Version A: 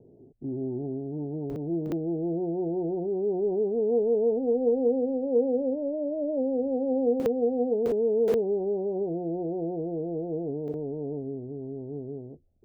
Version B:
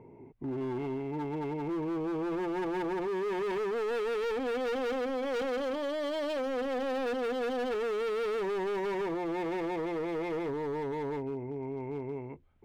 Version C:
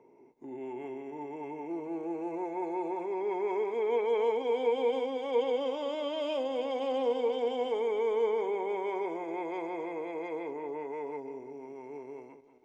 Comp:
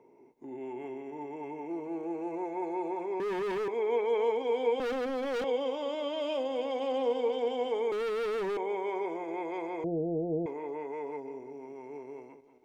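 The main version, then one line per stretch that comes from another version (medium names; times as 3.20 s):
C
3.20–3.68 s: from B
4.80–5.44 s: from B
7.92–8.57 s: from B
9.84–10.46 s: from A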